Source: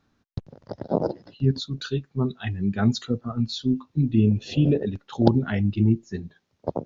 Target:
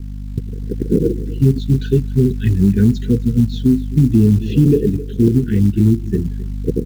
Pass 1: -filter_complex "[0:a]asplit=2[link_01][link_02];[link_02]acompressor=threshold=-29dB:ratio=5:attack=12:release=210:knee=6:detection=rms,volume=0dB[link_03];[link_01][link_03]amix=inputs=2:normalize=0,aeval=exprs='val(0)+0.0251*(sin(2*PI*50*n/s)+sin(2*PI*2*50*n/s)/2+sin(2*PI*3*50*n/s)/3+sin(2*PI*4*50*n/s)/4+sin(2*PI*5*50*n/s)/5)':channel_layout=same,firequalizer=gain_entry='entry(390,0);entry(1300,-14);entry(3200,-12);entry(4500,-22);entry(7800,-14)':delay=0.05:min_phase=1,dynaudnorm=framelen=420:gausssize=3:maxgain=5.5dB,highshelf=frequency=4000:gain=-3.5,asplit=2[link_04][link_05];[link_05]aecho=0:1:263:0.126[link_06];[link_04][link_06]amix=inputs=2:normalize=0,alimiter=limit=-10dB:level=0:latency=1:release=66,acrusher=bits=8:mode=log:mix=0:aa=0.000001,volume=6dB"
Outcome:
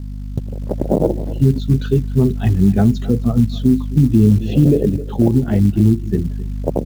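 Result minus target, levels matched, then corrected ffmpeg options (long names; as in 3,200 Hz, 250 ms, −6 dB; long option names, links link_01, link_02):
1,000 Hz band +17.5 dB
-filter_complex "[0:a]asplit=2[link_01][link_02];[link_02]acompressor=threshold=-29dB:ratio=5:attack=12:release=210:knee=6:detection=rms,volume=0dB[link_03];[link_01][link_03]amix=inputs=2:normalize=0,aeval=exprs='val(0)+0.0251*(sin(2*PI*50*n/s)+sin(2*PI*2*50*n/s)/2+sin(2*PI*3*50*n/s)/3+sin(2*PI*4*50*n/s)/4+sin(2*PI*5*50*n/s)/5)':channel_layout=same,firequalizer=gain_entry='entry(390,0);entry(1300,-14);entry(3200,-12);entry(4500,-22);entry(7800,-14)':delay=0.05:min_phase=1,dynaudnorm=framelen=420:gausssize=3:maxgain=5.5dB,asuperstop=centerf=840:order=20:qfactor=0.85,highshelf=frequency=4000:gain=-3.5,asplit=2[link_04][link_05];[link_05]aecho=0:1:263:0.126[link_06];[link_04][link_06]amix=inputs=2:normalize=0,alimiter=limit=-10dB:level=0:latency=1:release=66,acrusher=bits=8:mode=log:mix=0:aa=0.000001,volume=6dB"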